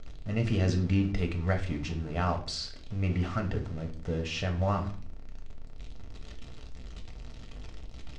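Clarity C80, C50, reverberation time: 16.0 dB, 11.5 dB, 0.45 s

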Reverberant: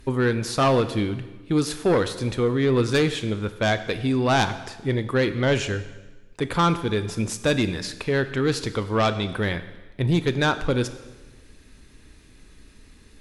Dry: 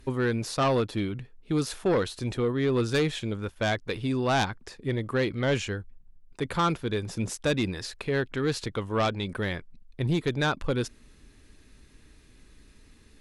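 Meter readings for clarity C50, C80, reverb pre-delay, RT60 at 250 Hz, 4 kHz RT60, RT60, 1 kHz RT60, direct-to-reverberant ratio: 12.5 dB, 14.0 dB, 6 ms, 1.2 s, 1.1 s, 1.2 s, 1.2 s, 10.5 dB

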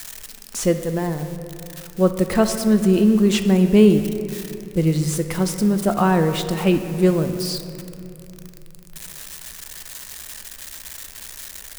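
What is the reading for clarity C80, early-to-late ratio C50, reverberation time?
9.5 dB, 8.5 dB, 2.9 s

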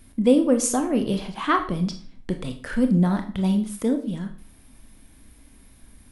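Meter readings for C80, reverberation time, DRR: 15.5 dB, 0.45 s, 6.0 dB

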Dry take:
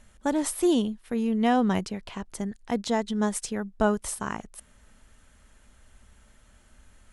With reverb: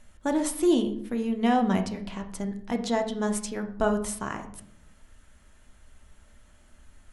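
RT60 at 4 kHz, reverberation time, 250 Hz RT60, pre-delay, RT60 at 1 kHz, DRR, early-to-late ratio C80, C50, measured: 0.40 s, 0.65 s, 0.95 s, 3 ms, 0.55 s, 5.0 dB, 15.0 dB, 11.0 dB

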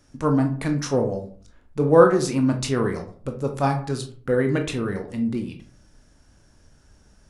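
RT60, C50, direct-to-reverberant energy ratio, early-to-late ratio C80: 0.45 s, 9.5 dB, 4.0 dB, 15.0 dB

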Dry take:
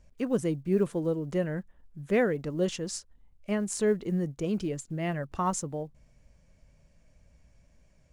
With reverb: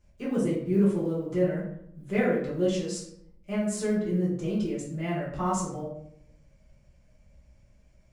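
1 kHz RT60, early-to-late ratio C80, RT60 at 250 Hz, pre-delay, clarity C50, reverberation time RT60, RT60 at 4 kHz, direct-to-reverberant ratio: 0.65 s, 7.5 dB, 0.90 s, 3 ms, 3.5 dB, 0.70 s, 0.45 s, -8.0 dB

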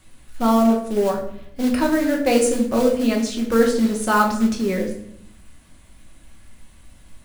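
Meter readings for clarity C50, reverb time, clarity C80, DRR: 7.0 dB, 0.70 s, 10.5 dB, 0.0 dB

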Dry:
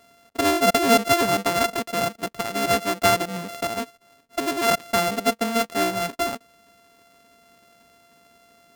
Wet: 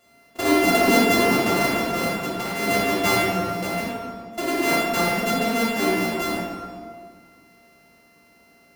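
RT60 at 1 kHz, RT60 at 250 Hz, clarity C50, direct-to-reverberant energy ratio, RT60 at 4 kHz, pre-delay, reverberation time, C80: 1.8 s, 2.1 s, -2.0 dB, -8.5 dB, 1.2 s, 3 ms, 1.9 s, 0.5 dB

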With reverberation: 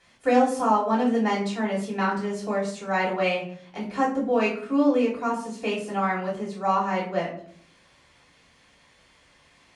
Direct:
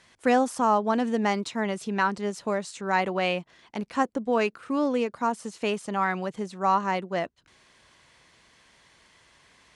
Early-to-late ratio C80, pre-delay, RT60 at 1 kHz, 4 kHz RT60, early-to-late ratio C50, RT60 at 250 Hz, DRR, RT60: 11.5 dB, 3 ms, 0.50 s, 0.35 s, 7.5 dB, 0.90 s, -7.5 dB, 0.55 s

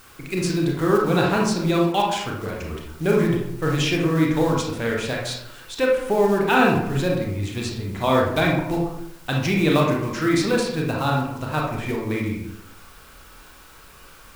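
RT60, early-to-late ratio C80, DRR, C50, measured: 0.75 s, 6.5 dB, -2.0 dB, 2.0 dB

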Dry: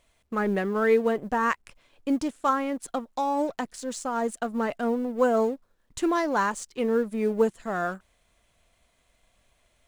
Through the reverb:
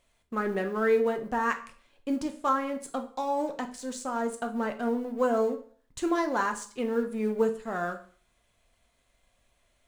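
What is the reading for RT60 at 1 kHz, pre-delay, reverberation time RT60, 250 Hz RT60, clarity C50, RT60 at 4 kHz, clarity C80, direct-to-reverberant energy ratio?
0.45 s, 4 ms, 0.45 s, 0.45 s, 12.5 dB, 0.45 s, 17.0 dB, 5.5 dB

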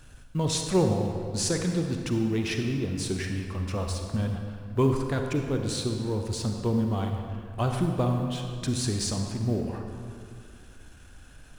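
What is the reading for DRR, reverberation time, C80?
3.5 dB, 2.2 s, 5.0 dB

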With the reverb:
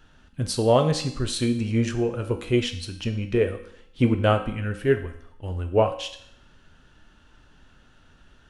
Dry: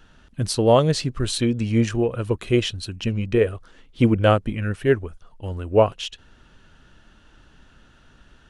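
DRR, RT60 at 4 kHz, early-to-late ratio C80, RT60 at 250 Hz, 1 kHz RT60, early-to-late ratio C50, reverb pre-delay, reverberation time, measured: 5.5 dB, 0.70 s, 13.5 dB, 0.70 s, 0.70 s, 11.0 dB, 4 ms, 0.70 s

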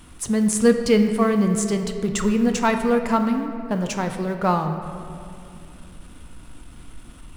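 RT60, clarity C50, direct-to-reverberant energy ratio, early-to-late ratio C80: 2.6 s, 7.0 dB, 5.5 dB, 8.0 dB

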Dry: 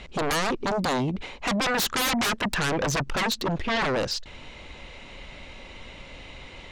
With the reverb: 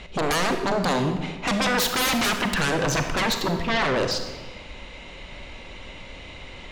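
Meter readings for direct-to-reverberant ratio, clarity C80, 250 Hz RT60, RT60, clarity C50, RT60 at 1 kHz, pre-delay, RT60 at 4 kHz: 5.5 dB, 8.5 dB, 1.6 s, 1.3 s, 6.5 dB, 1.2 s, 32 ms, 0.95 s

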